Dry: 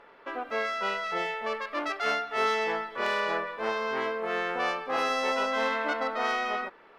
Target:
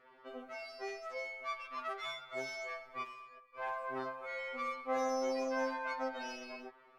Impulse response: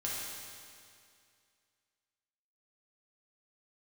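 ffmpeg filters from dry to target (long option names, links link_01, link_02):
-filter_complex "[0:a]asplit=3[link_01][link_02][link_03];[link_01]afade=type=out:start_time=3.02:duration=0.02[link_04];[link_02]agate=range=-20dB:threshold=-25dB:ratio=16:detection=peak,afade=type=in:start_time=3.02:duration=0.02,afade=type=out:start_time=3.54:duration=0.02[link_05];[link_03]afade=type=in:start_time=3.54:duration=0.02[link_06];[link_04][link_05][link_06]amix=inputs=3:normalize=0,afftfilt=real='re*2.45*eq(mod(b,6),0)':imag='im*2.45*eq(mod(b,6),0)':win_size=2048:overlap=0.75,volume=-6.5dB"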